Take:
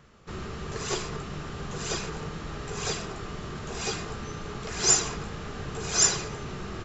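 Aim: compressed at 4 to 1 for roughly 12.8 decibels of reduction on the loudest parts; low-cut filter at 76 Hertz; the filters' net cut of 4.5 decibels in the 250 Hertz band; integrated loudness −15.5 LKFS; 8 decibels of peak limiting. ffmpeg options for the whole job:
ffmpeg -i in.wav -af "highpass=76,equalizer=frequency=250:width_type=o:gain=-7.5,acompressor=threshold=-32dB:ratio=4,volume=23dB,alimiter=limit=-5.5dB:level=0:latency=1" out.wav

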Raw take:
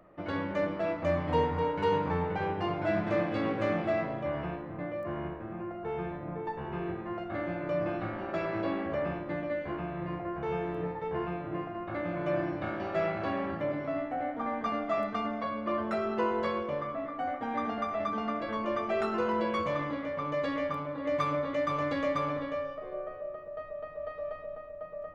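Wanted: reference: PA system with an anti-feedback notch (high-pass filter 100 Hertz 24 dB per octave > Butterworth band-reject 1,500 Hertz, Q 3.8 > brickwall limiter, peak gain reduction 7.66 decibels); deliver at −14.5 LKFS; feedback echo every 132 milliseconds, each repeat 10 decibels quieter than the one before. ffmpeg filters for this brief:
ffmpeg -i in.wav -af "highpass=frequency=100:width=0.5412,highpass=frequency=100:width=1.3066,asuperstop=centerf=1500:order=8:qfactor=3.8,aecho=1:1:132|264|396|528:0.316|0.101|0.0324|0.0104,volume=19.5dB,alimiter=limit=-4.5dB:level=0:latency=1" out.wav

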